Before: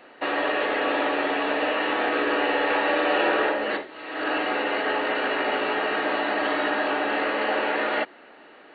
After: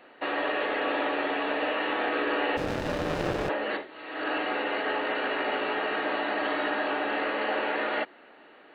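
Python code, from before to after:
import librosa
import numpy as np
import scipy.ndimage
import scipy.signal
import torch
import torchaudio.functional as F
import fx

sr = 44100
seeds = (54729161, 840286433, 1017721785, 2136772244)

y = fx.running_max(x, sr, window=33, at=(2.56, 3.48), fade=0.02)
y = y * 10.0 ** (-4.0 / 20.0)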